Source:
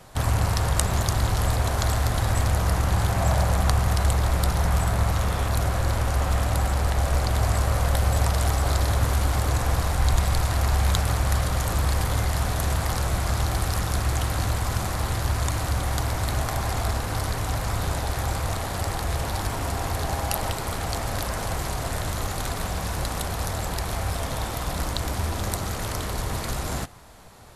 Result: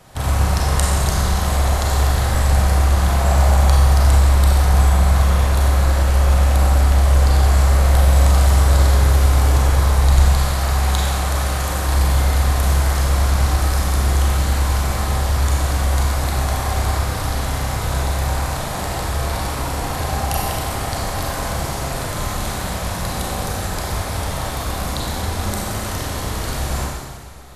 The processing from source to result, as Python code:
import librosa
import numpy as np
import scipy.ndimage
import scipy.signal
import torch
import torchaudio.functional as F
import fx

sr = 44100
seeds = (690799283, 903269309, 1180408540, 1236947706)

y = fx.low_shelf(x, sr, hz=150.0, db=-8.5, at=(10.29, 11.88))
y = fx.rev_schroeder(y, sr, rt60_s=1.6, comb_ms=30, drr_db=-3.5)